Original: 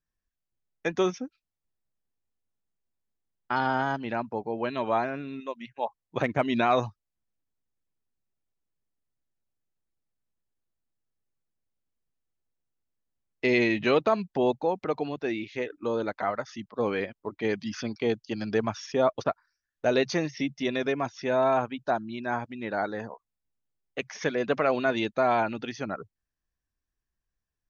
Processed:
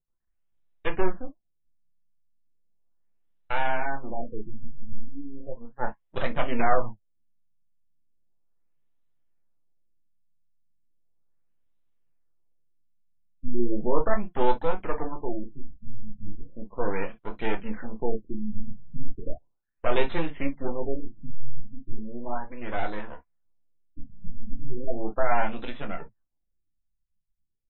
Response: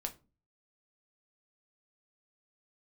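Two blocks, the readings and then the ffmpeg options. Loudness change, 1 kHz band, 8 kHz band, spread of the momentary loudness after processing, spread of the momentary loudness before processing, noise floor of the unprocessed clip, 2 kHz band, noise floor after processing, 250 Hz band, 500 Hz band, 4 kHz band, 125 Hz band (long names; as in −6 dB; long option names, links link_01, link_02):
−3.0 dB, −2.5 dB, can't be measured, 19 LU, 12 LU, below −85 dBFS, −4.0 dB, −74 dBFS, −4.0 dB, −4.5 dB, −7.5 dB, −0.5 dB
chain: -filter_complex "[0:a]aeval=exprs='max(val(0),0)':channel_layout=same[link_01];[1:a]atrim=start_sample=2205,atrim=end_sample=3087[link_02];[link_01][link_02]afir=irnorm=-1:irlink=0,afftfilt=real='re*lt(b*sr/1024,220*pow(4100/220,0.5+0.5*sin(2*PI*0.36*pts/sr)))':imag='im*lt(b*sr/1024,220*pow(4100/220,0.5+0.5*sin(2*PI*0.36*pts/sr)))':win_size=1024:overlap=0.75,volume=4.5dB"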